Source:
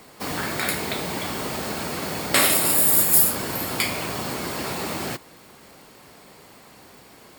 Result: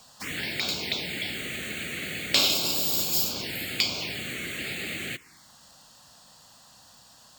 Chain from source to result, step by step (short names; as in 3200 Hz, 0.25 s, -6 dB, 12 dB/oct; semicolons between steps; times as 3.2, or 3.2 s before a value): band shelf 3700 Hz +11 dB 2.4 oct; envelope phaser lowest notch 340 Hz, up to 1900 Hz, full sweep at -16 dBFS; gain -7 dB